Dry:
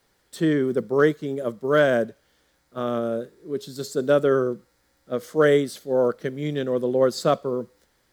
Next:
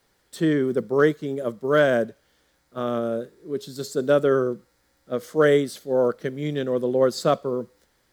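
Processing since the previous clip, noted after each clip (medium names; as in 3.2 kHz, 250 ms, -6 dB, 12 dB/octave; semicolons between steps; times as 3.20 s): no audible change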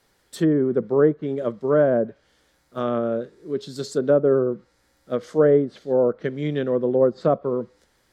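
low-pass that closes with the level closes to 840 Hz, closed at -17 dBFS; trim +2 dB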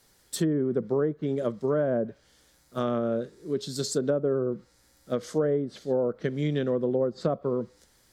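tone controls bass +4 dB, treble +9 dB; compression 6:1, threshold -20 dBFS, peak gain reduction 9.5 dB; trim -2 dB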